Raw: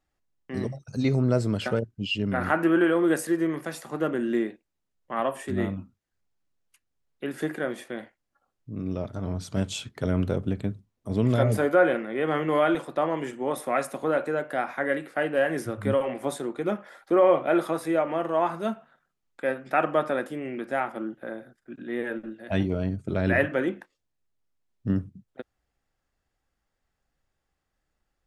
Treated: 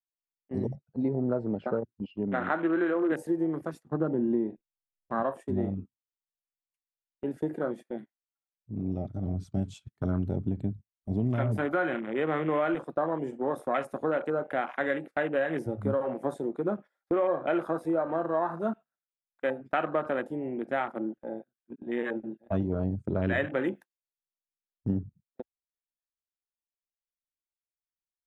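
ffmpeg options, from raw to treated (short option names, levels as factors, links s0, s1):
-filter_complex "[0:a]asettb=1/sr,asplit=3[s0][s1][s2];[s0]atrim=end=0.754[s3];[s1]atrim=start=0.75:end=3.12,asetpts=PTS-STARTPTS,afade=t=in:d=0.004:c=qsin,afade=t=out:st=2.366:d=0.004:c=qsin,highpass=200,lowpass=2100[s4];[s2]atrim=start=3.116[s5];[s3][s4]acrossfade=d=0.004:c1=hsin:c2=qsin[s6];[s6][s5]acrossfade=d=0.004:c1=qsin:c2=hsin,asettb=1/sr,asplit=3[s7][s8][s9];[s7]atrim=end=3.834[s10];[s8]atrim=start=3.83:end=5.23,asetpts=PTS-STARTPTS,afade=t=in:d=0.004:c=qsin,afade=t=out:st=1.396:d=0.004:c=qsin,aemphasis=mode=reproduction:type=bsi[s11];[s9]atrim=start=5.226[s12];[s10][s11]acrossfade=d=0.004:c1=hsin:c2=qsin[s13];[s13][s12]acrossfade=d=0.004:c1=qsin:c2=hsin,asettb=1/sr,asplit=3[s14][s15][s16];[s14]atrim=end=7.964[s17];[s15]atrim=start=7.96:end=12.07,asetpts=PTS-STARTPTS,afade=t=in:d=0.004:c=qsin,afade=t=out:st=4.106:d=0.004:c=qsin,equalizer=f=490:w=4:g=-11.5[s18];[s16]atrim=start=12.066[s19];[s17][s18]acrossfade=d=0.004:c1=hsin:c2=qsin[s20];[s20][s19]acrossfade=d=0.004:c1=qsin:c2=hsin,asettb=1/sr,asplit=3[s21][s22][s23];[s21]atrim=end=23.644[s24];[s22]atrim=start=23.64:end=24.95,asetpts=PTS-STARTPTS,afade=t=in:d=0.004:c=qsin,afade=t=out:st=1.306:d=0.004:c=qsin,aemphasis=mode=production:type=75kf[s25];[s23]atrim=start=24.946[s26];[s24][s25]acrossfade=d=0.004:c1=hsin:c2=qsin[s27];[s27][s26]acrossfade=d=0.004:c1=qsin:c2=hsin,afwtdn=0.0224,agate=range=0.141:threshold=0.01:ratio=16:detection=peak,acompressor=threshold=0.0631:ratio=4"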